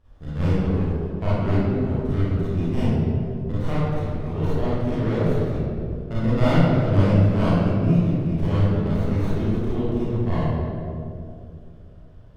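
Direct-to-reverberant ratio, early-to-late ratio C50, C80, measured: −11.5 dB, −6.0 dB, −2.0 dB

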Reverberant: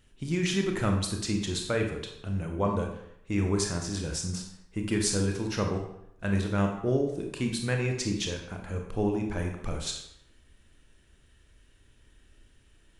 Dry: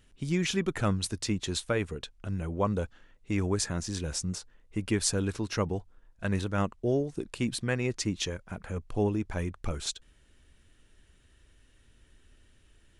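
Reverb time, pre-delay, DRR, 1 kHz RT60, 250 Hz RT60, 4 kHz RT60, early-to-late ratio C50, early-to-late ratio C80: 0.75 s, 25 ms, 2.0 dB, 0.80 s, 0.70 s, 0.60 s, 5.0 dB, 8.0 dB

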